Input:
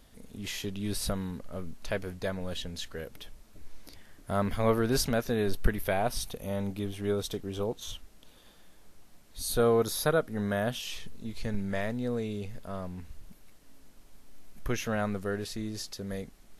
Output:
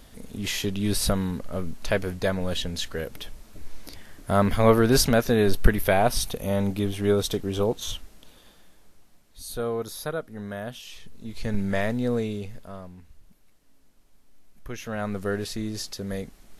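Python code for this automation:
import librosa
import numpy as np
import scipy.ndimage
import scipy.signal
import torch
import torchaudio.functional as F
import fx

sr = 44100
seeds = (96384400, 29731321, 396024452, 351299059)

y = fx.gain(x, sr, db=fx.line((7.9, 8.0), (9.43, -4.5), (10.94, -4.5), (11.59, 6.5), (12.18, 6.5), (13.01, -6.0), (14.67, -6.0), (15.26, 5.0)))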